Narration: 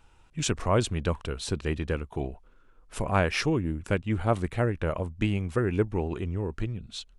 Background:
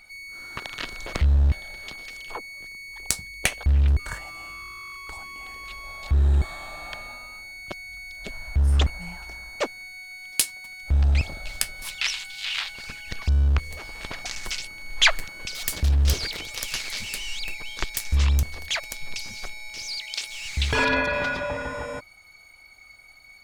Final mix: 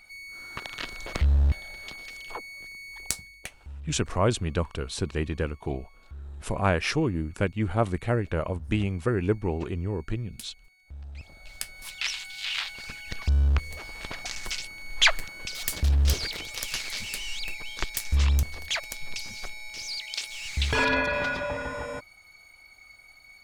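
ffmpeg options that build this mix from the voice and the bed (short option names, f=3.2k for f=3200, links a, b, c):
-filter_complex "[0:a]adelay=3500,volume=0.5dB[a];[1:a]volume=17.5dB,afade=t=out:st=2.98:d=0.53:silence=0.105925,afade=t=in:st=11.15:d=1.19:silence=0.1[b];[a][b]amix=inputs=2:normalize=0"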